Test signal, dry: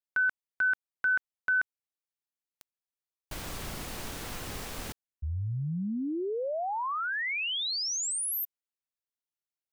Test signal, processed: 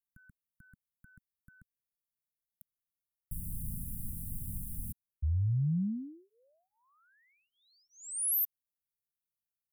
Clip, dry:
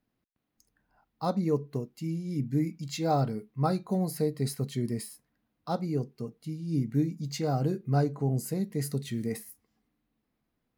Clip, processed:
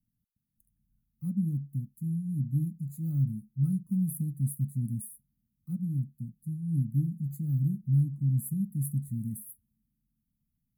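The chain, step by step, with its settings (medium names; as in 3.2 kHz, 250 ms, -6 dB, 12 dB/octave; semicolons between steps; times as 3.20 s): inverse Chebyshev band-stop 390–5900 Hz, stop band 40 dB; trim +3 dB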